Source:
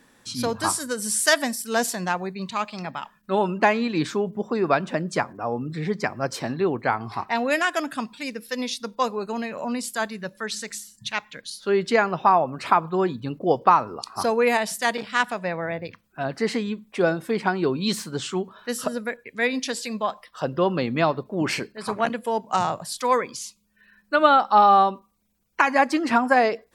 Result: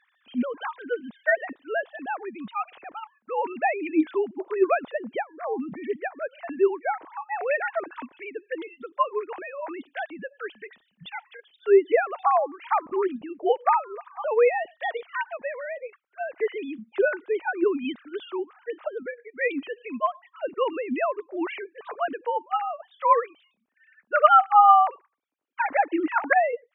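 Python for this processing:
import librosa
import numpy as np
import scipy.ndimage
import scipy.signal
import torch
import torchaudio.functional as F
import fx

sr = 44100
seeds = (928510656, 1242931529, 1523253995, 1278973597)

y = fx.sine_speech(x, sr)
y = fx.high_shelf(y, sr, hz=3000.0, db=-12.0, at=(18.7, 19.41))
y = y * librosa.db_to_amplitude(-2.0)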